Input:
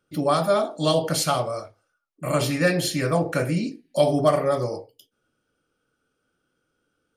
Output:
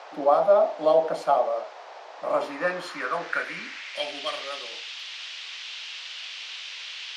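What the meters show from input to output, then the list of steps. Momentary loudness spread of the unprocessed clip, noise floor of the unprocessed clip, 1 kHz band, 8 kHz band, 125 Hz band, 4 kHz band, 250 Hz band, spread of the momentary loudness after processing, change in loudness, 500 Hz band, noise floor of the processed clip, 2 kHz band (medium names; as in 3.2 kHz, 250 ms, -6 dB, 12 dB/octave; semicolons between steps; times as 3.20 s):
9 LU, -76 dBFS, +0.5 dB, -13.0 dB, -24.0 dB, -1.0 dB, -13.5 dB, 14 LU, -4.0 dB, -1.0 dB, -44 dBFS, 0.0 dB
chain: band noise 400–5900 Hz -38 dBFS; steep high-pass 170 Hz 48 dB/octave; band-pass sweep 720 Hz -> 3 kHz, 2.15–4.26 s; trim +5.5 dB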